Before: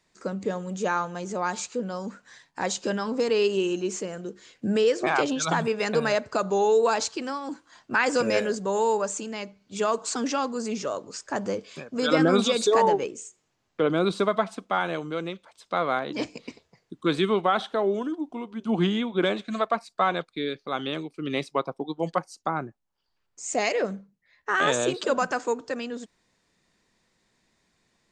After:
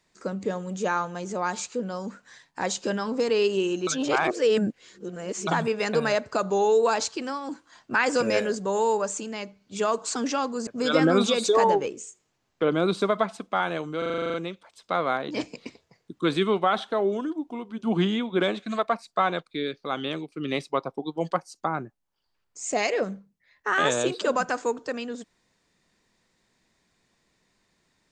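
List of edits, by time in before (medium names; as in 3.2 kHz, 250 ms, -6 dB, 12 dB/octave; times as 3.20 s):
3.87–5.47 s: reverse
10.67–11.85 s: delete
15.16 s: stutter 0.04 s, 10 plays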